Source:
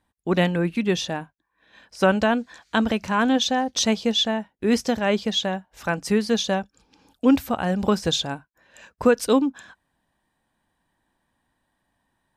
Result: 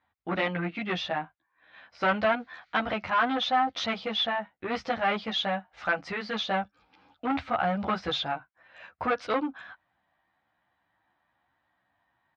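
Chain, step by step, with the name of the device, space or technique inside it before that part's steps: barber-pole flanger into a guitar amplifier (endless flanger 11.9 ms +2.7 Hz; soft clip -21 dBFS, distortion -11 dB; speaker cabinet 85–4000 Hz, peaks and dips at 160 Hz -5 dB, 240 Hz -8 dB, 410 Hz -7 dB, 730 Hz +7 dB, 1300 Hz +9 dB, 2100 Hz +7 dB); 5.26–5.89 high shelf 8100 Hz +11.5 dB

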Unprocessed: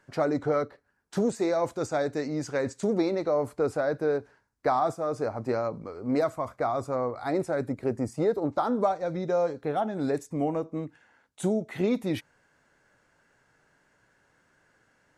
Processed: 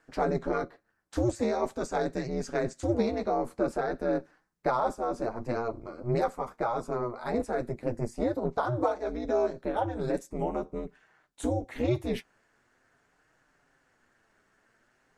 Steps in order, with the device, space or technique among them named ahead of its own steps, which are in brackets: alien voice (ring modulator 120 Hz; flange 0.45 Hz, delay 6.2 ms, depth 3.4 ms, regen -37%); gain +4.5 dB

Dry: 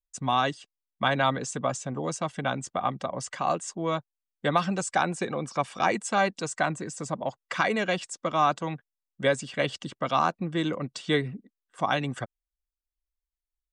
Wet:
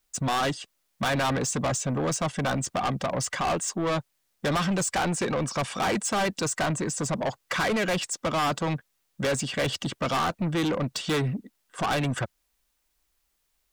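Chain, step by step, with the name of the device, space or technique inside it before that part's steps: open-reel tape (soft clip -32 dBFS, distortion -4 dB; bell 79 Hz +4 dB 1.07 oct; white noise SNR 47 dB); gain +9 dB

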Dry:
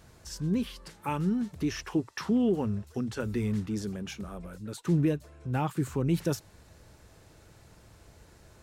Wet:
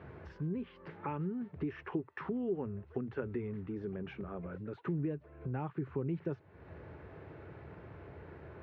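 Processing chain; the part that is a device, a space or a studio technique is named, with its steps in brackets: bass amplifier (compressor 3:1, threshold -47 dBFS, peak gain reduction 18.5 dB; speaker cabinet 86–2300 Hz, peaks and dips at 110 Hz -7 dB, 210 Hz -6 dB, 400 Hz +6 dB); low shelf 190 Hz +6.5 dB; gain +5.5 dB

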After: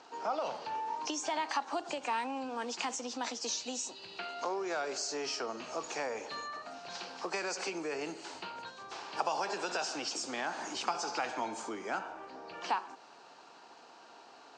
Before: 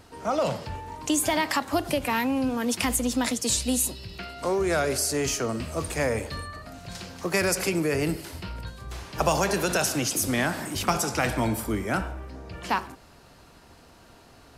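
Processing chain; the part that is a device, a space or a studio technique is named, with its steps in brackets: HPF 180 Hz 6 dB/oct; hearing aid with frequency lowering (nonlinear frequency compression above 4000 Hz 1.5:1; compressor 2.5:1, threshold -34 dBFS, peak gain reduction 10.5 dB; speaker cabinet 400–6600 Hz, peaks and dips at 570 Hz -4 dB, 840 Hz +6 dB, 2000 Hz -6 dB, 3500 Hz -3 dB)

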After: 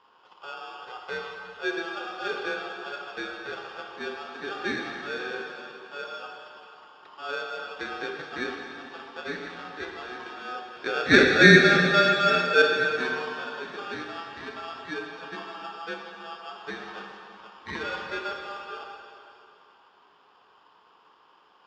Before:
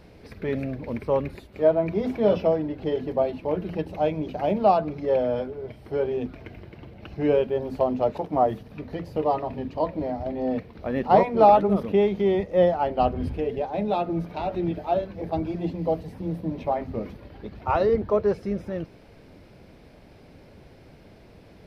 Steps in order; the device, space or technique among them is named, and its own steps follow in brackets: 10.72–12.62 band shelf 690 Hz +12.5 dB 2.7 oct; ring modulator pedal into a guitar cabinet (polarity switched at an audio rate 1000 Hz; speaker cabinet 95–4500 Hz, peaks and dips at 110 Hz -7 dB, 410 Hz +4 dB, 610 Hz -6 dB, 1000 Hz +4 dB); plate-style reverb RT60 2.7 s, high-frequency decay 0.95×, DRR 0.5 dB; gain -13 dB

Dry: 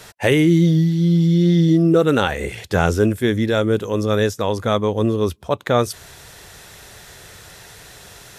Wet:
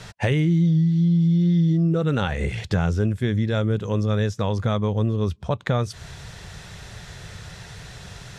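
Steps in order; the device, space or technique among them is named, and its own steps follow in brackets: jukebox (LPF 6500 Hz 12 dB/oct; resonant low shelf 220 Hz +7.5 dB, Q 1.5; compressor 3:1, threshold -21 dBFS, peak gain reduction 12.5 dB)

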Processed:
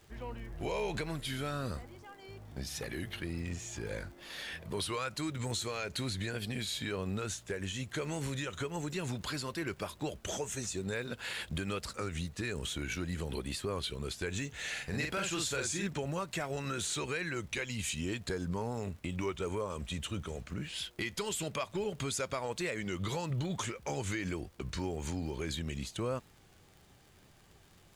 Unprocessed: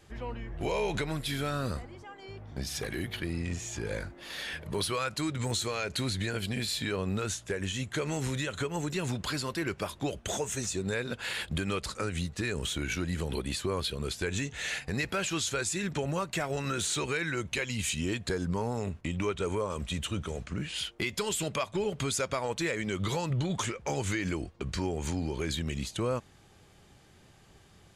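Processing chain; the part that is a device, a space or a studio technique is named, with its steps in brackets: warped LP (record warp 33 1/3 rpm, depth 100 cents; crackle 77/s -44 dBFS; pink noise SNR 31 dB); 14.72–15.87 doubler 45 ms -3.5 dB; gain -4.5 dB

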